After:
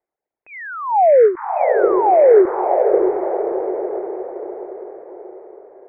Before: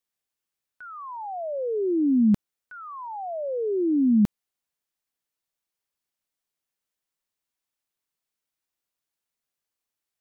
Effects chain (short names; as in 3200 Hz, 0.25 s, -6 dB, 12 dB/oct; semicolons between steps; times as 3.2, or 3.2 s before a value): reverb removal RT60 1.8 s; steep low-pass 1300 Hz 72 dB/oct; in parallel at -1 dB: compressor 12:1, threshold -36 dBFS, peak gain reduction 18 dB; on the sum: speed mistake 45 rpm record played at 78 rpm; short-mantissa float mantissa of 8-bit; band shelf 520 Hz +12.5 dB; diffused feedback echo 0.613 s, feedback 48%, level -4.5 dB; dynamic EQ 250 Hz, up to -5 dB, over -23 dBFS, Q 0.91; ending taper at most 200 dB/s; gain +1 dB